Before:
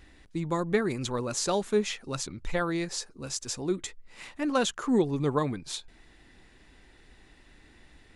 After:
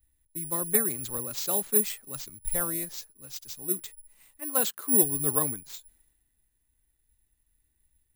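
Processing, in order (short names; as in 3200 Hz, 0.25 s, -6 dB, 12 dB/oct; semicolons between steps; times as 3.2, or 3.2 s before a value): 4.39–5 HPF 360 Hz -> 88 Hz; careless resampling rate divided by 4×, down none, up zero stuff; three-band expander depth 70%; gain -7.5 dB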